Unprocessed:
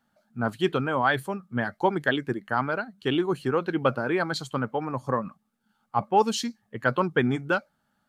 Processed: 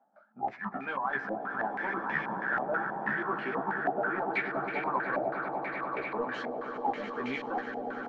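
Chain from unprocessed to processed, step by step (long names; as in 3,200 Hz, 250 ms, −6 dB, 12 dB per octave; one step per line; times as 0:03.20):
pitch shifter gated in a rhythm −10.5 semitones, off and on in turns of 396 ms
high-pass filter 190 Hz 24 dB per octave
low-shelf EQ 390 Hz −8.5 dB
reversed playback
downward compressor 6 to 1, threshold −37 dBFS, peak gain reduction 17 dB
reversed playback
amplitude tremolo 5.5 Hz, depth 48%
in parallel at −6 dB: wave folding −37.5 dBFS
on the sum: double-tracking delay 15 ms −3 dB
echo that builds up and dies away 99 ms, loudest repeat 8, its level −11 dB
low-pass on a step sequencer 6.2 Hz 720–2,300 Hz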